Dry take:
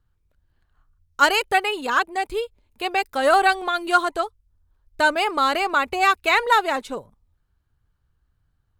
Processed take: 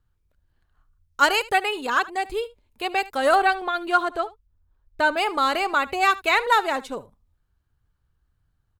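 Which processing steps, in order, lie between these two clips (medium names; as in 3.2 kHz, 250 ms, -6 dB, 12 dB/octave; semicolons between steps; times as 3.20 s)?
3.35–5.17 s: peaking EQ 9.3 kHz -9 dB 1.9 oct; delay 75 ms -19.5 dB; trim -1.5 dB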